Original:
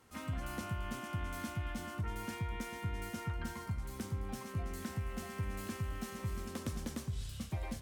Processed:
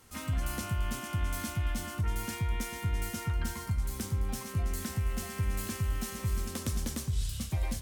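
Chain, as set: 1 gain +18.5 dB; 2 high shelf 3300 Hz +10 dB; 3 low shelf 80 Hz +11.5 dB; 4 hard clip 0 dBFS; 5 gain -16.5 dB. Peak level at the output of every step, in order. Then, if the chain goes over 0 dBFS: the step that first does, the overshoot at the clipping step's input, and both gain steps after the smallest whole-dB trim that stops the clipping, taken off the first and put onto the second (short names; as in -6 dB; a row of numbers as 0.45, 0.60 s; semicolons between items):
-8.0, -4.0, -3.5, -3.5, -20.0 dBFS; no overload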